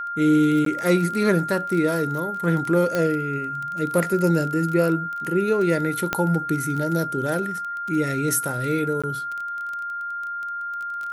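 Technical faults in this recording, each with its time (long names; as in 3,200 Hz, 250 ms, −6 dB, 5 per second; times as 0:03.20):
surface crackle 24 per second −27 dBFS
whistle 1,400 Hz −27 dBFS
0:00.65–0:00.66: drop-out 13 ms
0:02.95: click −10 dBFS
0:06.13: click −7 dBFS
0:09.02–0:09.04: drop-out 16 ms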